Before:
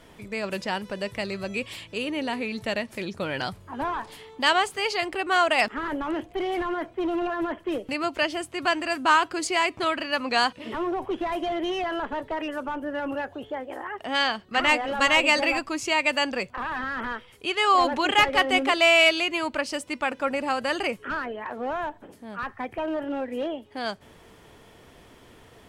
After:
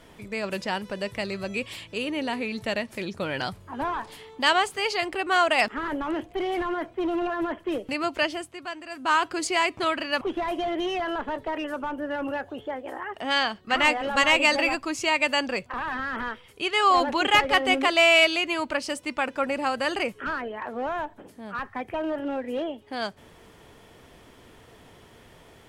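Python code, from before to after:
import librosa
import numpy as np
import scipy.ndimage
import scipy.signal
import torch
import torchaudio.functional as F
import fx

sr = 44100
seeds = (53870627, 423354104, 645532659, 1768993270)

y = fx.edit(x, sr, fx.fade_down_up(start_s=8.25, length_s=1.03, db=-11.5, fade_s=0.38),
    fx.cut(start_s=10.21, length_s=0.84), tone=tone)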